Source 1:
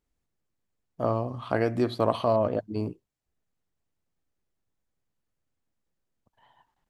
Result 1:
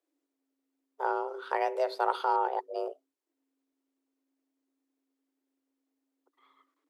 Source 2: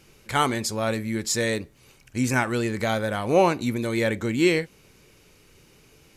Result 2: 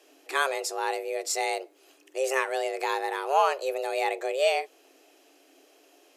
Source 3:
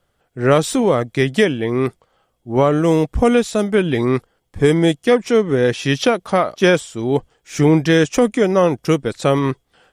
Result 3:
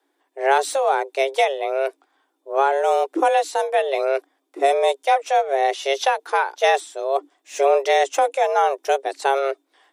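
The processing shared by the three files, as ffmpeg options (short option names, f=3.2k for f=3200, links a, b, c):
-af "afreqshift=270,volume=-4dB"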